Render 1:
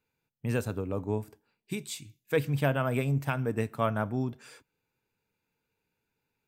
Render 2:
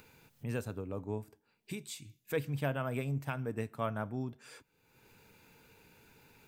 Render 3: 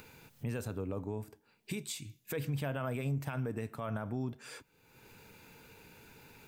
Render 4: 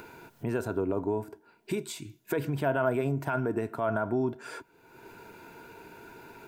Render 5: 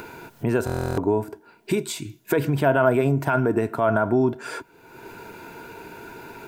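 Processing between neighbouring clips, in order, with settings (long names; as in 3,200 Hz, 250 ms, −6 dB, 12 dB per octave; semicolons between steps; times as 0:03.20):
upward compression, threshold −32 dBFS; level −7 dB
brickwall limiter −32.5 dBFS, peak gain reduction 11 dB; level +5 dB
hollow resonant body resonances 370/670/940/1,400 Hz, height 15 dB, ringing for 25 ms
buffer that repeats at 0:00.65, samples 1,024, times 13; level +8.5 dB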